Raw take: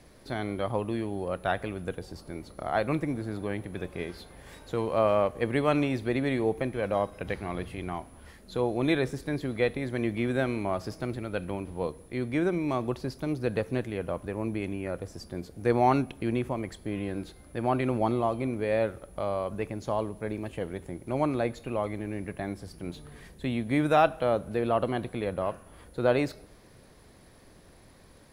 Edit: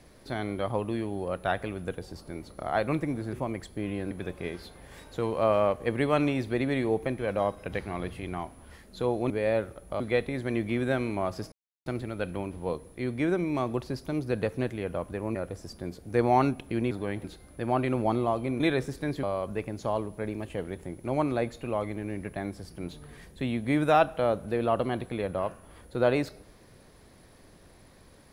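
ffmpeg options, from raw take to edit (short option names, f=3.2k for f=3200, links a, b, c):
-filter_complex "[0:a]asplit=11[a][b][c][d][e][f][g][h][i][j][k];[a]atrim=end=3.332[l];[b]atrim=start=16.418:end=17.202[m];[c]atrim=start=3.658:end=8.852[n];[d]atrim=start=18.558:end=19.262[o];[e]atrim=start=9.478:end=11,asetpts=PTS-STARTPTS,afade=t=out:st=1.518:d=0.004:c=hsin,apad=pad_dur=0.34[p];[f]atrim=start=11:end=14.492,asetpts=PTS-STARTPTS,afade=t=in:d=0.004:c=hsin[q];[g]atrim=start=14.858:end=16.422[r];[h]atrim=start=3.328:end=3.662[s];[i]atrim=start=17.198:end=18.562[t];[j]atrim=start=8.848:end=9.482[u];[k]atrim=start=19.258[v];[l][m]acrossfade=d=0.004:c1=hsin:c2=hsin[w];[w][n]acrossfade=d=0.004:c1=hsin:c2=hsin[x];[x][o]acrossfade=d=0.004:c1=hsin:c2=hsin[y];[p][q]concat=n=2:v=0:a=1[z];[y][z]acrossfade=d=0.004:c1=hsin:c2=hsin[aa];[aa][r]acrossfade=d=0.004:c1=hsin:c2=hsin[ab];[ab][s]acrossfade=d=0.004:c1=hsin:c2=hsin[ac];[ac][t]acrossfade=d=0.004:c1=hsin:c2=hsin[ad];[ad][u]acrossfade=d=0.004:c1=hsin:c2=hsin[ae];[ae][v]acrossfade=d=0.004:c1=hsin:c2=hsin"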